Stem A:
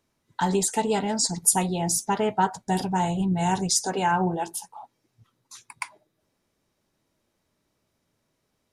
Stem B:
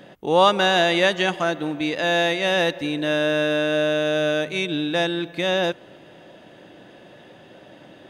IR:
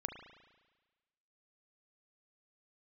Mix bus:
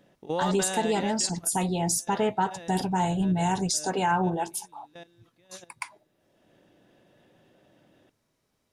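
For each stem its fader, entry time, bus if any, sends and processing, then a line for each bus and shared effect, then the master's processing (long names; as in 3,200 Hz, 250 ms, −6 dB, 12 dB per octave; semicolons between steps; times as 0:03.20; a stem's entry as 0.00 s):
−0.5 dB, 0.00 s, no send, no processing
−4.5 dB, 0.00 s, no send, low-shelf EQ 360 Hz +5.5 dB; output level in coarse steps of 19 dB; automatic ducking −20 dB, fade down 1.70 s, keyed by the first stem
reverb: not used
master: brickwall limiter −16 dBFS, peak gain reduction 10 dB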